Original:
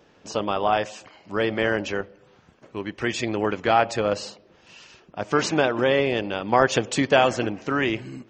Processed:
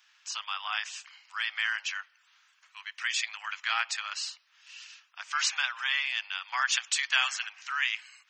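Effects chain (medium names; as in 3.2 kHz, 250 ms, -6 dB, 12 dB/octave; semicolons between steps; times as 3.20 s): Bessel high-pass 2 kHz, order 8; trim +2 dB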